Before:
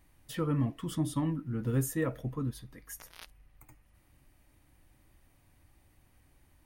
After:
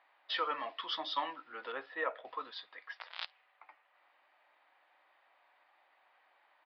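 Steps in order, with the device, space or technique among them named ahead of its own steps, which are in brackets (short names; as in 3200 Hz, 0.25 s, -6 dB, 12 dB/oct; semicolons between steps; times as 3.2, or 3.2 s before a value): musical greeting card (downsampling 11025 Hz; HPF 680 Hz 24 dB/oct; bell 3600 Hz +5 dB 0.5 oct); low-pass opened by the level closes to 1700 Hz, open at -41.5 dBFS; 1.72–2.25 air absorption 470 m; gain +8 dB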